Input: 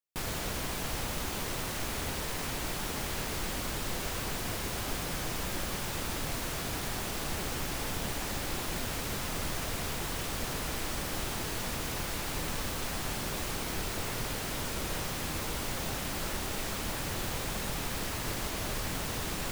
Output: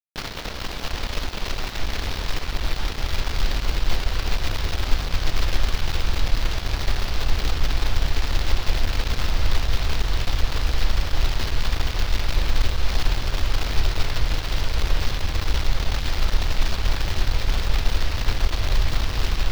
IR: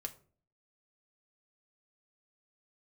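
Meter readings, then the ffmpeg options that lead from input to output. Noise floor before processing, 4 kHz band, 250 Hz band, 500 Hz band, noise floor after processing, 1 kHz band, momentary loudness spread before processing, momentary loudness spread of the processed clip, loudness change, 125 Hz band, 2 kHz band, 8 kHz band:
-36 dBFS, +8.0 dB, +2.5 dB, +4.0 dB, -31 dBFS, +5.0 dB, 0 LU, 4 LU, +8.0 dB, +12.5 dB, +6.5 dB, -1.5 dB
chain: -af "asubboost=boost=9.5:cutoff=65,acrusher=bits=6:dc=4:mix=0:aa=0.000001,aeval=exprs='sgn(val(0))*max(abs(val(0))-0.0141,0)':c=same,highshelf=f=6400:t=q:w=1.5:g=-12.5,volume=1.78"

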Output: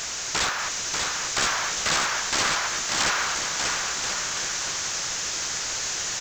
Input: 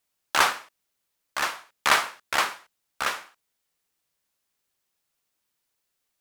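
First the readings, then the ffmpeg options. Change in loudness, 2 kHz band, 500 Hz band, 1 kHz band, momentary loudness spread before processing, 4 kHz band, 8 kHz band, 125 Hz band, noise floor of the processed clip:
+1.0 dB, +2.5 dB, +2.5 dB, 0.0 dB, 14 LU, +7.0 dB, +13.5 dB, +12.5 dB, -31 dBFS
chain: -af "aeval=exprs='val(0)+0.5*0.0335*sgn(val(0))':c=same,equalizer=f=250:t=o:w=0.67:g=-5,equalizer=f=1600:t=o:w=0.67:g=4,equalizer=f=6300:t=o:w=0.67:g=9,acompressor=threshold=0.0708:ratio=6,aresample=16000,aeval=exprs='(mod(12.6*val(0)+1,2)-1)/12.6':c=same,aresample=44100,aecho=1:1:590|1032|1364|1613|1800:0.631|0.398|0.251|0.158|0.1,acrusher=bits=7:mode=log:mix=0:aa=0.000001,volume=1.68"

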